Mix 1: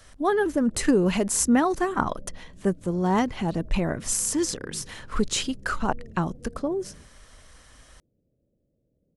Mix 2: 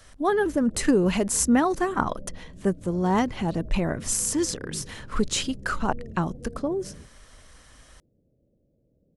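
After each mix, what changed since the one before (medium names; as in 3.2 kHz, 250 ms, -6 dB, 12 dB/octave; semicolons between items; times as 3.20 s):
background +5.0 dB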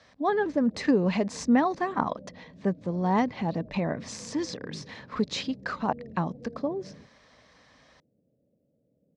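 master: add cabinet simulation 160–4700 Hz, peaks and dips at 360 Hz -7 dB, 1.4 kHz -8 dB, 3 kHz -8 dB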